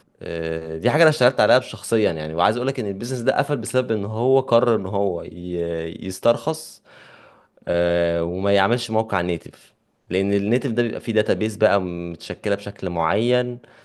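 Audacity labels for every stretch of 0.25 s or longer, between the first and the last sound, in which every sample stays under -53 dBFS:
9.730000	10.080000	silence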